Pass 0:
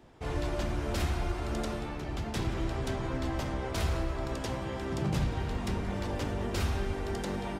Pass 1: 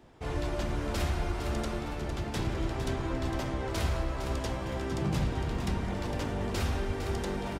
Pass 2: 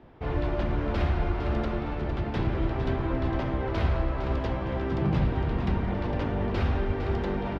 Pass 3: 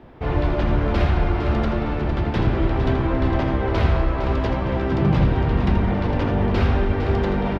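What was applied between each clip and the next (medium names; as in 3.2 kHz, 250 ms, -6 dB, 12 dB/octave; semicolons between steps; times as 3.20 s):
feedback delay 457 ms, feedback 43%, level -8.5 dB
distance through air 320 m; trim +5 dB
delay 81 ms -9 dB; trim +7 dB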